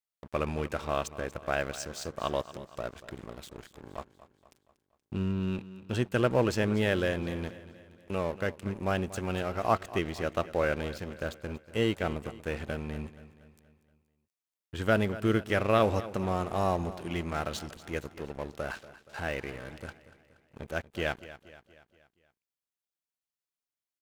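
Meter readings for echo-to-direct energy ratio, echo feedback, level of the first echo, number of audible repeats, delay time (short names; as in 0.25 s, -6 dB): -14.5 dB, 51%, -16.0 dB, 4, 0.237 s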